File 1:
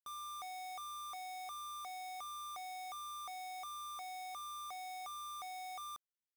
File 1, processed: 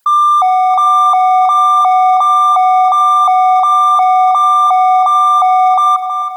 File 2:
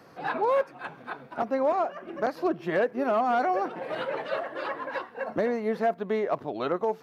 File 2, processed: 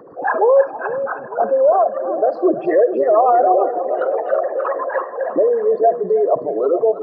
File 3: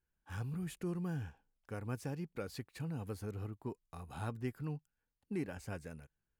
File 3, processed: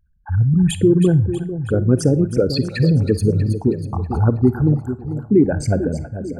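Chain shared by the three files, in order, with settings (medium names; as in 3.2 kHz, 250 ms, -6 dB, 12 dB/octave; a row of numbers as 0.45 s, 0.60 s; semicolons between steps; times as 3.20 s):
resonances exaggerated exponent 3; two-band feedback delay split 740 Hz, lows 445 ms, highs 321 ms, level -10.5 dB; Schroeder reverb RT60 0.31 s, DRR 16 dB; peak normalisation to -3 dBFS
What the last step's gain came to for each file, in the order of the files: +36.0 dB, +11.5 dB, +25.0 dB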